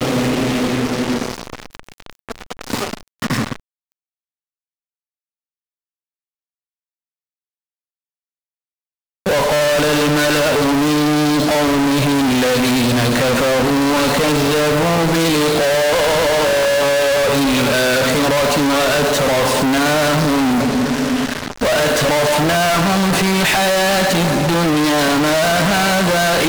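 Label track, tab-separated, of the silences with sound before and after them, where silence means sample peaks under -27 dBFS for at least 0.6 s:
3.560000	9.260000	silence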